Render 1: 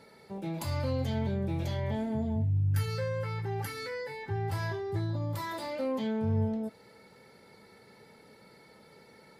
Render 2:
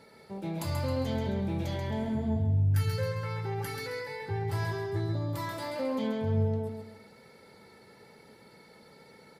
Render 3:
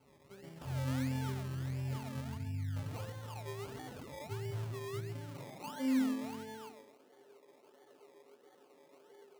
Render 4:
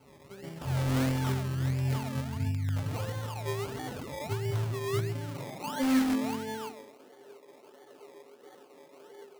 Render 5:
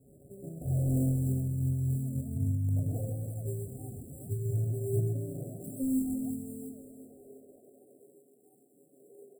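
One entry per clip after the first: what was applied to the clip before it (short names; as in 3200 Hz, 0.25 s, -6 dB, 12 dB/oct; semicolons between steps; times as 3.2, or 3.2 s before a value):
feedback echo 0.134 s, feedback 37%, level -5.5 dB
metallic resonator 130 Hz, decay 0.34 s, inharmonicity 0.008; decimation with a swept rate 24×, swing 60% 1.5 Hz; high-pass sweep 68 Hz -> 370 Hz, 3.73–7.13; gain +1 dB
in parallel at -7 dB: wrapped overs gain 31 dB; on the sum: noise-modulated level, depth 50%; gain +8 dB
FFT band-reject 770–7300 Hz; phaser stages 2, 0.44 Hz, lowest notch 550–1700 Hz; on a send: feedback echo 0.356 s, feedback 42%, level -12 dB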